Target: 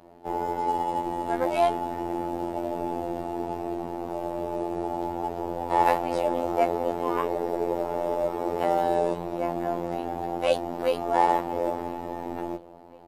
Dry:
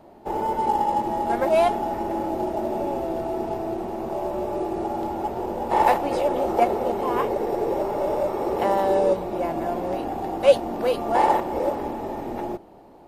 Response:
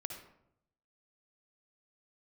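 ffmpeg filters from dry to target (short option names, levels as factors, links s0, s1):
-filter_complex "[0:a]asplit=2[s0][s1];[s1]adelay=1028,lowpass=f=4300:p=1,volume=0.0631,asplit=2[s2][s3];[s3]adelay=1028,lowpass=f=4300:p=1,volume=0.53,asplit=2[s4][s5];[s5]adelay=1028,lowpass=f=4300:p=1,volume=0.53[s6];[s0][s2][s4][s6]amix=inputs=4:normalize=0,afftfilt=real='hypot(re,im)*cos(PI*b)':imag='0':win_size=2048:overlap=0.75"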